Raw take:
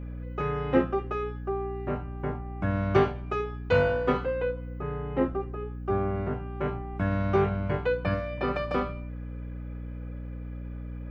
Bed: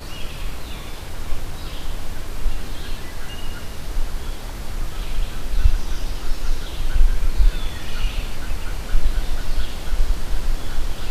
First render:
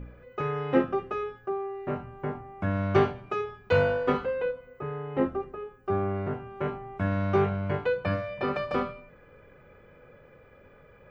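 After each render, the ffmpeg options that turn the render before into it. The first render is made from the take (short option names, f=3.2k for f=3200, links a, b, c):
-af "bandreject=f=60:t=h:w=4,bandreject=f=120:t=h:w=4,bandreject=f=180:t=h:w=4,bandreject=f=240:t=h:w=4,bandreject=f=300:t=h:w=4"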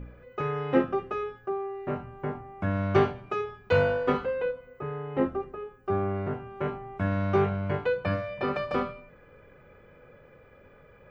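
-af anull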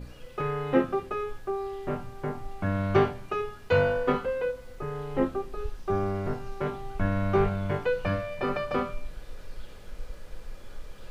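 -filter_complex "[1:a]volume=-20dB[a];[0:a][a]amix=inputs=2:normalize=0"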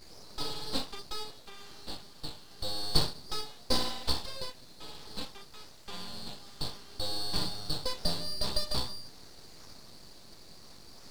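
-af "highpass=f=2.2k:t=q:w=10,aeval=exprs='abs(val(0))':c=same"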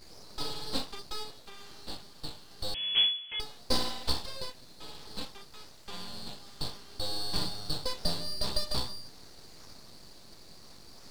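-filter_complex "[0:a]asettb=1/sr,asplit=3[a][b][c];[a]atrim=end=2.744[d];[b]atrim=start=2.74:end=3.4,asetpts=PTS-STARTPTS,afade=t=in:d=0.004:c=qsin,afade=t=out:st=0.656:d=0.004:c=qsin,lowpass=f=2.9k:t=q:w=0.5098,lowpass=f=2.9k:t=q:w=0.6013,lowpass=f=2.9k:t=q:w=0.9,lowpass=f=2.9k:t=q:w=2.563,afreqshift=-3400[e];[c]atrim=start=3.396[f];[d][e]acrossfade=d=0.004:c1=hsin:c2=qsin[g];[g][f]acrossfade=d=0.004:c1=qsin:c2=hsin"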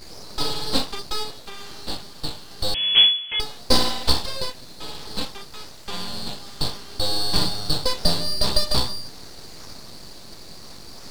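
-af "volume=11dB"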